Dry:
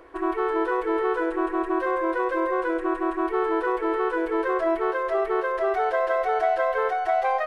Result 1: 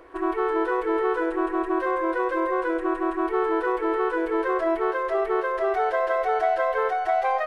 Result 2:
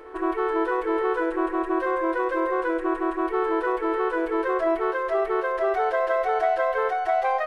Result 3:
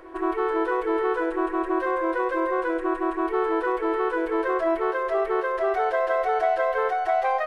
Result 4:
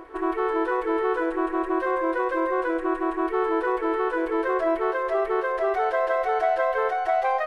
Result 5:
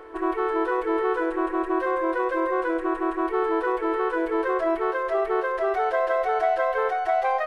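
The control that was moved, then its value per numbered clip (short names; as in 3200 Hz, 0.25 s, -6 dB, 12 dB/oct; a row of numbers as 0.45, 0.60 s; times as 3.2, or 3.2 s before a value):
reverse echo, time: 43, 979, 175, 274, 465 ms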